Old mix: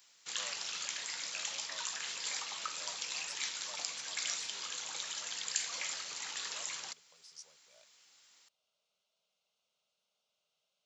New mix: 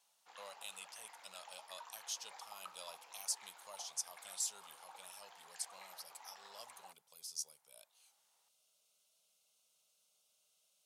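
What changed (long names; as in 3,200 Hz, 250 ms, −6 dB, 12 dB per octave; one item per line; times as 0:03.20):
speech: remove Gaussian smoothing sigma 1.7 samples
background: add resonant band-pass 800 Hz, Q 3.4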